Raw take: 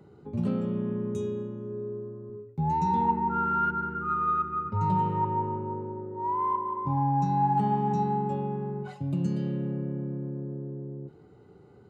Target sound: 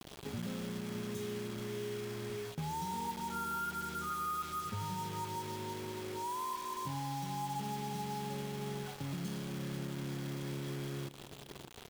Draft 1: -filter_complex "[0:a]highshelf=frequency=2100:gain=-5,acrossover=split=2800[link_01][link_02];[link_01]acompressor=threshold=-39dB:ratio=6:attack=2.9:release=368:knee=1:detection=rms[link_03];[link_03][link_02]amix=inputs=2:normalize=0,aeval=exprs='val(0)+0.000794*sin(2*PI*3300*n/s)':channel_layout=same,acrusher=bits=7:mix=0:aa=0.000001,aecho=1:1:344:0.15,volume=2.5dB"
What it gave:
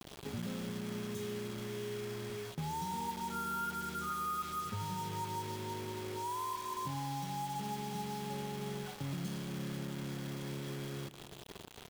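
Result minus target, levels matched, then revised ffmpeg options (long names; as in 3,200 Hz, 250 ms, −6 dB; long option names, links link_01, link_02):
echo 264 ms early
-filter_complex "[0:a]highshelf=frequency=2100:gain=-5,acrossover=split=2800[link_01][link_02];[link_01]acompressor=threshold=-39dB:ratio=6:attack=2.9:release=368:knee=1:detection=rms[link_03];[link_03][link_02]amix=inputs=2:normalize=0,aeval=exprs='val(0)+0.000794*sin(2*PI*3300*n/s)':channel_layout=same,acrusher=bits=7:mix=0:aa=0.000001,aecho=1:1:608:0.15,volume=2.5dB"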